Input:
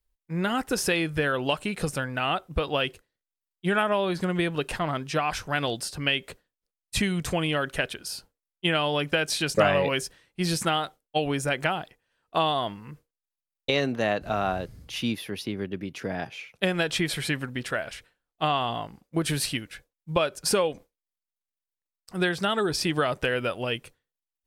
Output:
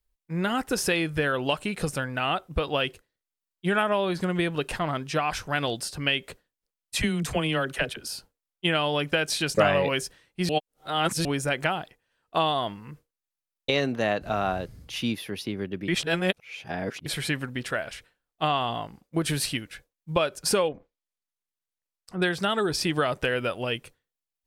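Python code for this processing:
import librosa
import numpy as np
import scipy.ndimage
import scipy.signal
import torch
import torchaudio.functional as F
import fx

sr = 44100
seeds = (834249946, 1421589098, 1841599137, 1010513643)

y = fx.dispersion(x, sr, late='lows', ms=40.0, hz=420.0, at=(6.95, 8.07))
y = fx.env_lowpass_down(y, sr, base_hz=1500.0, full_db=-35.0, at=(20.68, 22.22))
y = fx.edit(y, sr, fx.reverse_span(start_s=10.49, length_s=0.76),
    fx.reverse_span(start_s=15.88, length_s=1.18), tone=tone)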